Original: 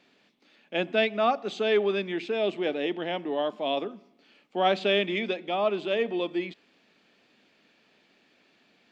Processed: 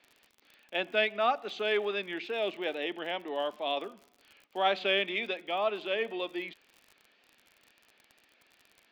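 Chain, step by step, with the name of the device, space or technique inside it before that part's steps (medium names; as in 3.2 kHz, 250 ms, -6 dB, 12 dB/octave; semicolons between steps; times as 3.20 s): high-pass 810 Hz 6 dB/octave; lo-fi chain (low-pass 4.4 kHz 12 dB/octave; wow and flutter; crackle 50 per s -43 dBFS)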